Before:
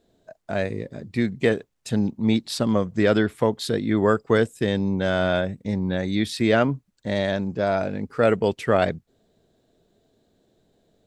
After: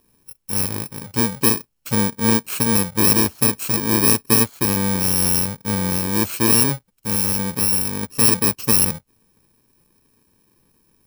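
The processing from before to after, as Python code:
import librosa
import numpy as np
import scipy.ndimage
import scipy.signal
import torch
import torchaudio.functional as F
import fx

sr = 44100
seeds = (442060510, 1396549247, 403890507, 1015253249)

y = fx.bit_reversed(x, sr, seeds[0], block=64)
y = y * librosa.db_to_amplitude(3.5)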